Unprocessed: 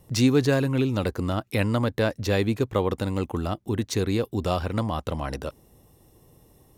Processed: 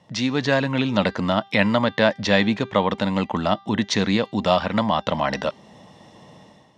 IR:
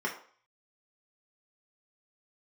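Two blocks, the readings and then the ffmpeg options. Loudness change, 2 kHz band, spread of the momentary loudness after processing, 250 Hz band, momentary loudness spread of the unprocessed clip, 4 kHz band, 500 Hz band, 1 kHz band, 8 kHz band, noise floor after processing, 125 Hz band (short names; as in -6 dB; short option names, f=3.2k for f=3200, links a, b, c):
+4.0 dB, +9.0 dB, 5 LU, +3.5 dB, 9 LU, +8.5 dB, +4.0 dB, +9.0 dB, +0.5 dB, -52 dBFS, -1.5 dB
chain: -filter_complex "[0:a]dynaudnorm=f=110:g=7:m=10.5dB,equalizer=f=390:w=1:g=-6,asplit=2[a][b];[b]acompressor=threshold=-31dB:ratio=6,volume=2dB[c];[a][c]amix=inputs=2:normalize=0,highpass=190,equalizer=f=200:t=q:w=4:g=8,equalizer=f=380:t=q:w=4:g=-4,equalizer=f=620:t=q:w=4:g=7,equalizer=f=920:t=q:w=4:g=6,equalizer=f=1.9k:t=q:w=4:g=7,equalizer=f=3.3k:t=q:w=4:g=6,lowpass=f=5.9k:w=0.5412,lowpass=f=5.9k:w=1.3066,bandreject=f=394.8:t=h:w=4,bandreject=f=789.6:t=h:w=4,bandreject=f=1.1844k:t=h:w=4,bandreject=f=1.5792k:t=h:w=4,bandreject=f=1.974k:t=h:w=4,bandreject=f=2.3688k:t=h:w=4,bandreject=f=2.7636k:t=h:w=4,bandreject=f=3.1584k:t=h:w=4,bandreject=f=3.5532k:t=h:w=4,bandreject=f=3.948k:t=h:w=4,bandreject=f=4.3428k:t=h:w=4,bandreject=f=4.7376k:t=h:w=4,bandreject=f=5.1324k:t=h:w=4,bandreject=f=5.5272k:t=h:w=4,bandreject=f=5.922k:t=h:w=4,bandreject=f=6.3168k:t=h:w=4,bandreject=f=6.7116k:t=h:w=4,volume=-4dB"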